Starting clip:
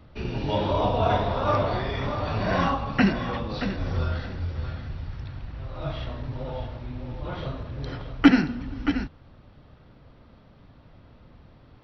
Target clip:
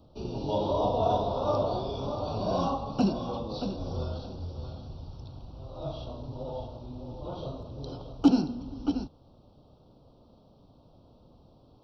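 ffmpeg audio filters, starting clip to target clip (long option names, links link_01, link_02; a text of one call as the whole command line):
ffmpeg -i in.wav -af "lowshelf=frequency=190:gain=-9.5,asoftclip=type=tanh:threshold=-9dB,asuperstop=centerf=1900:order=4:qfactor=0.61" out.wav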